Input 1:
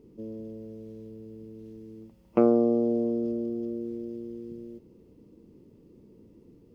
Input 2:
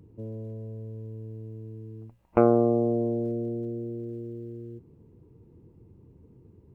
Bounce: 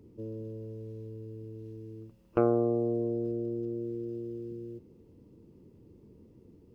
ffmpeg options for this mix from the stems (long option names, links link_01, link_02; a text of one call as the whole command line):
ffmpeg -i stem1.wav -i stem2.wav -filter_complex "[0:a]acrossover=split=160[link_01][link_02];[link_02]acompressor=threshold=-32dB:ratio=6[link_03];[link_01][link_03]amix=inputs=2:normalize=0,volume=-3.5dB[link_04];[1:a]volume=-6.5dB[link_05];[link_04][link_05]amix=inputs=2:normalize=0" out.wav